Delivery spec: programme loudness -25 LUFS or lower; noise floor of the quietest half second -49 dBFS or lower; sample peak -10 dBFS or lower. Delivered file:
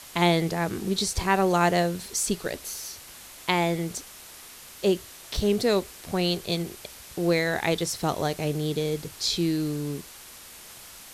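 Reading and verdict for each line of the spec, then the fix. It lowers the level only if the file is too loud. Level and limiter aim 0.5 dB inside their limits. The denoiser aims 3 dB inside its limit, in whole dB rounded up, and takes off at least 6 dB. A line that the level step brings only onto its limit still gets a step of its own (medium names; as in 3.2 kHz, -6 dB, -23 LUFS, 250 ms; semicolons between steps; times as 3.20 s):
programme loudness -26.5 LUFS: pass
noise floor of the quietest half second -46 dBFS: fail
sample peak -6.5 dBFS: fail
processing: noise reduction 6 dB, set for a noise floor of -46 dBFS; peak limiter -10.5 dBFS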